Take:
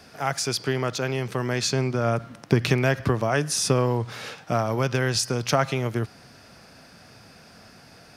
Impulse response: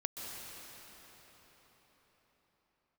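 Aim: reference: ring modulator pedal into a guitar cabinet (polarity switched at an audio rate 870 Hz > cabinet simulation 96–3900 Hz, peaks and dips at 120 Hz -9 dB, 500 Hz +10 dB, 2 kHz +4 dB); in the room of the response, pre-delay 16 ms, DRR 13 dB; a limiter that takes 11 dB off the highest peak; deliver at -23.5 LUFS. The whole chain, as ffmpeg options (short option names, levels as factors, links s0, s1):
-filter_complex "[0:a]alimiter=limit=0.178:level=0:latency=1,asplit=2[s0][s1];[1:a]atrim=start_sample=2205,adelay=16[s2];[s1][s2]afir=irnorm=-1:irlink=0,volume=0.188[s3];[s0][s3]amix=inputs=2:normalize=0,aeval=exprs='val(0)*sgn(sin(2*PI*870*n/s))':c=same,highpass=96,equalizer=f=120:t=q:w=4:g=-9,equalizer=f=500:t=q:w=4:g=10,equalizer=f=2000:t=q:w=4:g=4,lowpass=f=3900:w=0.5412,lowpass=f=3900:w=1.3066,volume=1.06"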